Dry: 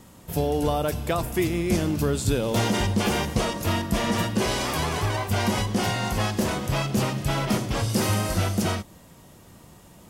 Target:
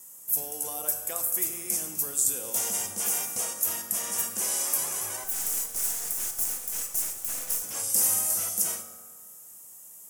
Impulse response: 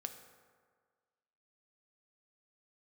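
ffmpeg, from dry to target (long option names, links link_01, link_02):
-filter_complex "[0:a]highpass=frequency=840:poles=1,asettb=1/sr,asplit=3[link_01][link_02][link_03];[link_01]atrim=end=5.244[link_04];[link_02]atrim=start=5.24:end=7.63,asetpts=PTS-STARTPTS,afade=type=in:duration=0.004:curve=qsin,afade=type=out:start_time=2.386:duration=0.004:curve=qsin,aeval=exprs='abs(val(0))':channel_layout=same[link_05];[link_03]atrim=start=7.626[link_06];[link_04][link_05]acrossfade=duration=0.004:curve1=hsin:curve2=qsin[link_07];[link_07][link_06]acrossfade=duration=0.004:curve1=qsin:curve2=hsin,aexciter=amount=15.9:drive=2.3:freq=6100[link_08];[1:a]atrim=start_sample=2205[link_09];[link_08][link_09]afir=irnorm=-1:irlink=0,volume=-8dB"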